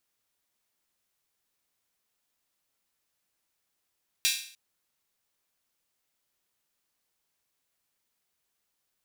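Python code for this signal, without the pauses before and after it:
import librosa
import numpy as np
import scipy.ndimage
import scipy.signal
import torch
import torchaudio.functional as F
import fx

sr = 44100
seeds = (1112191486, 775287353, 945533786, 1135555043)

y = fx.drum_hat_open(sr, length_s=0.3, from_hz=2900.0, decay_s=0.52)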